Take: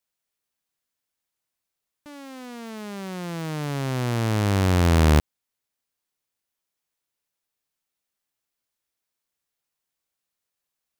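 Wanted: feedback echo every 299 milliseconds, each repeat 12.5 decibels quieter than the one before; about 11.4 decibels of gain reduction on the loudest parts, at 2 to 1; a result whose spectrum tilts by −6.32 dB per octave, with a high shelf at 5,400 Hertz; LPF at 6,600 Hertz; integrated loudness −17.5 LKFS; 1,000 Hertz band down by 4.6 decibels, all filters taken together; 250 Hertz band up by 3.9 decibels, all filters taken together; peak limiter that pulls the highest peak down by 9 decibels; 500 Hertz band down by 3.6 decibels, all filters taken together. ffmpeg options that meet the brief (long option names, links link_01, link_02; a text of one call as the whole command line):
ffmpeg -i in.wav -af "lowpass=6600,equalizer=frequency=250:width_type=o:gain=7,equalizer=frequency=500:width_type=o:gain=-6.5,equalizer=frequency=1000:width_type=o:gain=-4.5,highshelf=frequency=5400:gain=5.5,acompressor=threshold=-34dB:ratio=2,alimiter=level_in=4dB:limit=-24dB:level=0:latency=1,volume=-4dB,aecho=1:1:299|598|897:0.237|0.0569|0.0137,volume=18dB" out.wav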